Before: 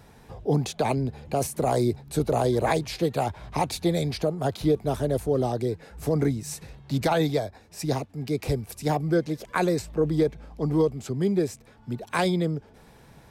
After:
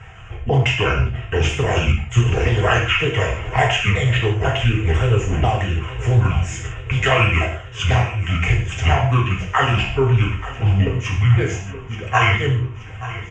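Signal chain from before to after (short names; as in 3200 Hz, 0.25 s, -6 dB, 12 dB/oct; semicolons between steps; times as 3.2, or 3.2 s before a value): repeated pitch sweeps -10.5 st, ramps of 0.494 s; EQ curve 120 Hz 0 dB, 210 Hz -22 dB, 2900 Hz +9 dB, 4200 Hz -23 dB, 7000 Hz +12 dB, 11000 Hz -10 dB; harmonic-percussive split percussive +7 dB; in parallel at -1 dB: compressor, threshold -28 dBFS, peak gain reduction 10 dB; on the sum: air absorption 230 m; notch comb 290 Hz; on a send: feedback echo 0.878 s, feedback 59%, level -15.5 dB; on the sum: non-linear reverb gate 0.2 s falling, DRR -1.5 dB; Doppler distortion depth 0.13 ms; gain +6 dB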